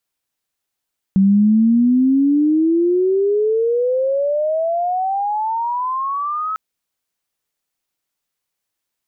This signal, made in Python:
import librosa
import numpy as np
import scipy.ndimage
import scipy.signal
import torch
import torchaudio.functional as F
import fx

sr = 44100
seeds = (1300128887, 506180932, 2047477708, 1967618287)

y = fx.chirp(sr, length_s=5.4, from_hz=190.0, to_hz=1300.0, law='logarithmic', from_db=-9.0, to_db=-19.5)